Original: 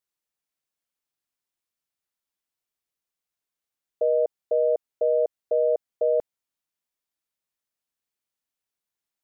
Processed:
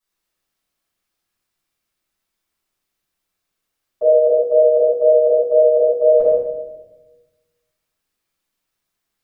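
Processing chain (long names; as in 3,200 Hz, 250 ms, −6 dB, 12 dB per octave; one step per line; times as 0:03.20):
rectangular room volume 560 cubic metres, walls mixed, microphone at 9.8 metres
level −4.5 dB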